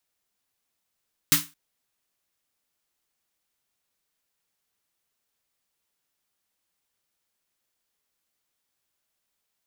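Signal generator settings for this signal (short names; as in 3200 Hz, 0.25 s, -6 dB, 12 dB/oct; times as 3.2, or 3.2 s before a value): snare drum length 0.22 s, tones 160 Hz, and 290 Hz, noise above 1100 Hz, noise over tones 10 dB, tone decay 0.25 s, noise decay 0.26 s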